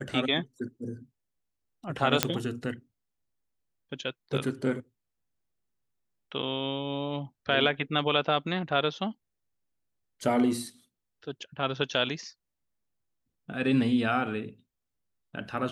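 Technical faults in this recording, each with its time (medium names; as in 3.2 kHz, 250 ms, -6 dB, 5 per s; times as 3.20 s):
2.23 s: pop -3 dBFS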